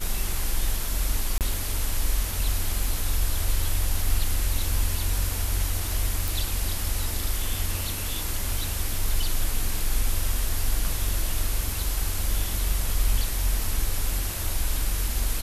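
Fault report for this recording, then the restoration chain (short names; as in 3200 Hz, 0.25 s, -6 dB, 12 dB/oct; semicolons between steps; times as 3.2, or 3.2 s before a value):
1.38–1.41 gap 28 ms
6.28 pop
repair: de-click; interpolate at 1.38, 28 ms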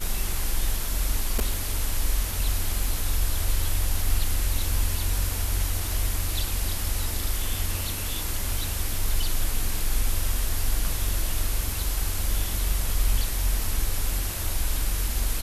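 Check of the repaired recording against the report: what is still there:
none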